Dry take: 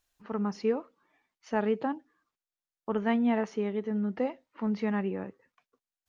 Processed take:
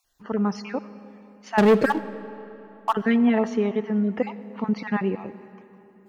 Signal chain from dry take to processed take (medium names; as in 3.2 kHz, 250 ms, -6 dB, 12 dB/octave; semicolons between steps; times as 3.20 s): random holes in the spectrogram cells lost 23%; 1.58–2.93 s: waveshaping leveller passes 3; on a send: reverberation RT60 3.4 s, pre-delay 30 ms, DRR 15 dB; on the sum: trim +7.5 dB